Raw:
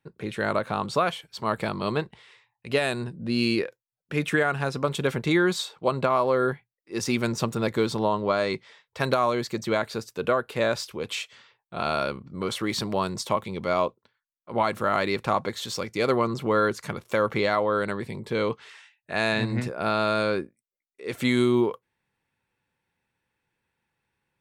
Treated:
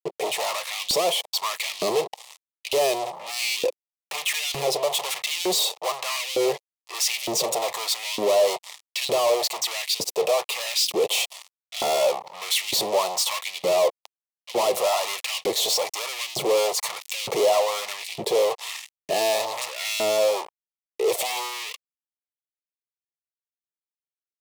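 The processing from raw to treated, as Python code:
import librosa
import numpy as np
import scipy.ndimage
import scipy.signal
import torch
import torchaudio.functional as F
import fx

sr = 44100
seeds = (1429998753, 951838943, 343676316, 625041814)

y = fx.fuzz(x, sr, gain_db=43.0, gate_db=-49.0)
y = fx.fixed_phaser(y, sr, hz=630.0, stages=4)
y = fx.filter_lfo_highpass(y, sr, shape='saw_up', hz=1.1, low_hz=270.0, high_hz=3200.0, q=1.7)
y = y * librosa.db_to_amplitude(-6.0)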